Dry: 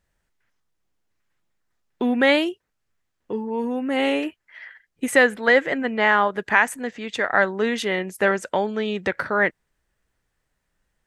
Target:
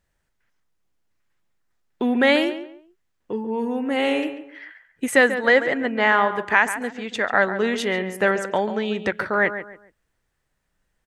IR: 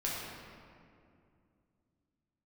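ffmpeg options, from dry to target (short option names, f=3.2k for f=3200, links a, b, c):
-filter_complex "[0:a]asplit=2[a][b];[b]adelay=140,lowpass=f=2.2k:p=1,volume=-10dB,asplit=2[c][d];[d]adelay=140,lowpass=f=2.2k:p=1,volume=0.3,asplit=2[e][f];[f]adelay=140,lowpass=f=2.2k:p=1,volume=0.3[g];[a][c][e][g]amix=inputs=4:normalize=0"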